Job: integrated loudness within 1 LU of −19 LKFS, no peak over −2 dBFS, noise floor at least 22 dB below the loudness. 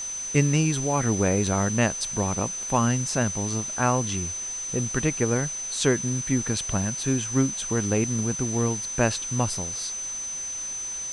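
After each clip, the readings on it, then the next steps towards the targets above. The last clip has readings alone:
interfering tone 6,100 Hz; level of the tone −30 dBFS; background noise floor −33 dBFS; target noise floor −47 dBFS; integrated loudness −25.0 LKFS; sample peak −6.0 dBFS; target loudness −19.0 LKFS
→ notch filter 6,100 Hz, Q 30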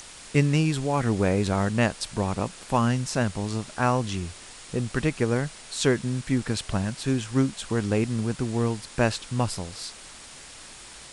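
interfering tone none found; background noise floor −45 dBFS; target noise floor −49 dBFS
→ noise reduction from a noise print 6 dB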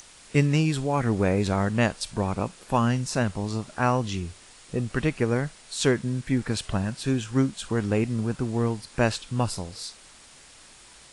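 background noise floor −51 dBFS; integrated loudness −26.5 LKFS; sample peak −6.0 dBFS; target loudness −19.0 LKFS
→ level +7.5 dB
brickwall limiter −2 dBFS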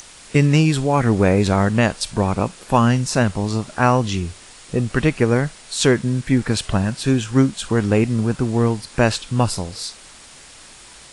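integrated loudness −19.0 LKFS; sample peak −2.0 dBFS; background noise floor −43 dBFS

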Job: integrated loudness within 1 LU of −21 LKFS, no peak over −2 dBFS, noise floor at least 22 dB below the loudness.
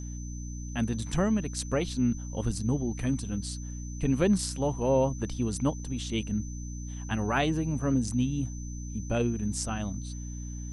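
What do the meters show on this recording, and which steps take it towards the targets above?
mains hum 60 Hz; hum harmonics up to 300 Hz; level of the hum −35 dBFS; interfering tone 6,100 Hz; level of the tone −47 dBFS; integrated loudness −30.5 LKFS; sample peak −13.5 dBFS; target loudness −21.0 LKFS
→ mains-hum notches 60/120/180/240/300 Hz
notch filter 6,100 Hz, Q 30
level +9.5 dB

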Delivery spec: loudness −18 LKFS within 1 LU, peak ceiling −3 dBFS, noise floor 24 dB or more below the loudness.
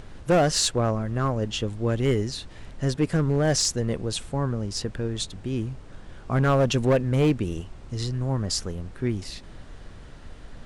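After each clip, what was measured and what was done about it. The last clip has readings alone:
share of clipped samples 1.2%; peaks flattened at −15.0 dBFS; background noise floor −44 dBFS; target noise floor −50 dBFS; integrated loudness −25.5 LKFS; sample peak −15.0 dBFS; target loudness −18.0 LKFS
→ clipped peaks rebuilt −15 dBFS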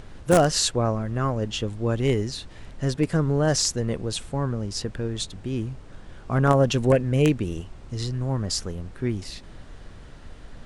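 share of clipped samples 0.0%; background noise floor −44 dBFS; target noise floor −49 dBFS
→ noise reduction from a noise print 6 dB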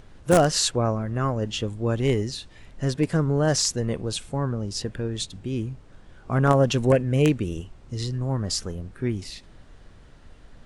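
background noise floor −50 dBFS; integrated loudness −24.5 LKFS; sample peak −6.0 dBFS; target loudness −18.0 LKFS
→ level +6.5 dB
brickwall limiter −3 dBFS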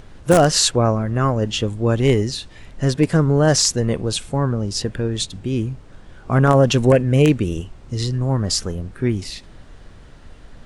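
integrated loudness −18.5 LKFS; sample peak −3.0 dBFS; background noise floor −43 dBFS

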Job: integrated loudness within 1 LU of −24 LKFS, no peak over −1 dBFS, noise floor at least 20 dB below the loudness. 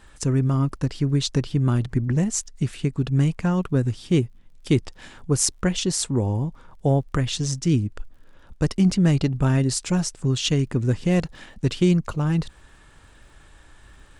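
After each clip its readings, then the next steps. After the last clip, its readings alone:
crackle rate 43 per second; integrated loudness −23.0 LKFS; sample peak −4.0 dBFS; target loudness −24.0 LKFS
→ click removal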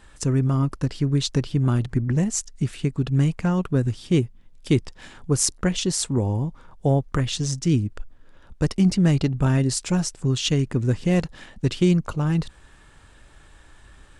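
crackle rate 0.14 per second; integrated loudness −23.0 LKFS; sample peak −4.0 dBFS; target loudness −24.0 LKFS
→ level −1 dB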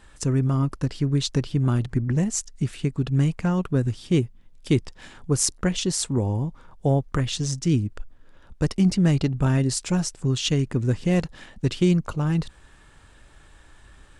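integrated loudness −24.0 LKFS; sample peak −5.0 dBFS; background noise floor −52 dBFS

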